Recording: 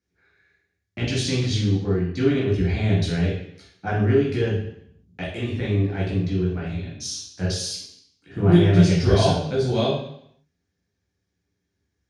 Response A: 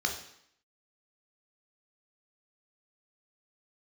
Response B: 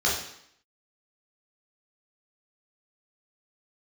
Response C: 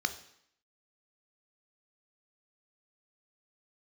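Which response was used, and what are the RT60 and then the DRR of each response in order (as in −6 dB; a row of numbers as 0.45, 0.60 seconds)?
B; 0.70, 0.70, 0.70 seconds; 2.0, −5.5, 8.5 decibels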